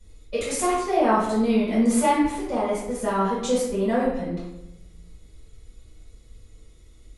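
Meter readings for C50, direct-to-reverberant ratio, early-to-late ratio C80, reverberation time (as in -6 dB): 0.5 dB, -10.0 dB, 4.5 dB, 0.95 s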